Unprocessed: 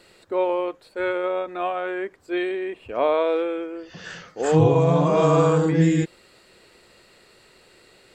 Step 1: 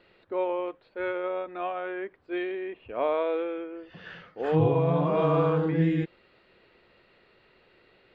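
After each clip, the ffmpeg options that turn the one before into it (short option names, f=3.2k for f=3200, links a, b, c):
-af "lowpass=f=3.4k:w=0.5412,lowpass=f=3.4k:w=1.3066,volume=-6dB"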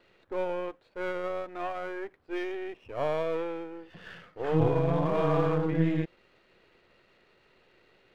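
-af "aeval=exprs='if(lt(val(0),0),0.447*val(0),val(0))':c=same"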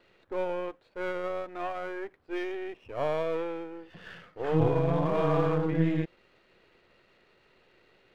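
-af anull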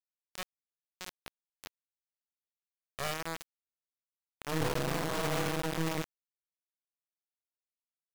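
-af "acrusher=bits=3:mix=0:aa=0.000001,volume=-7.5dB"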